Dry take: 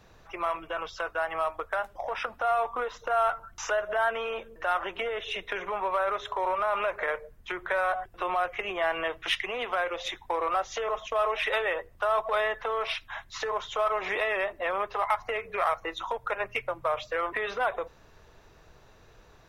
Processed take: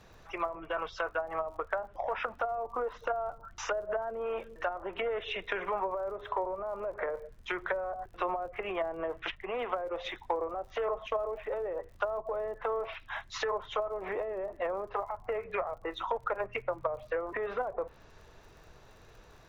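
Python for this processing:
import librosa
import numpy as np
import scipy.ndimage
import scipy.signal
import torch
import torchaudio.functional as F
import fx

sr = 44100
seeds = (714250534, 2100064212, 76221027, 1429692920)

y = fx.env_lowpass_down(x, sr, base_hz=460.0, full_db=-24.5)
y = fx.dmg_crackle(y, sr, seeds[0], per_s=55.0, level_db=-51.0)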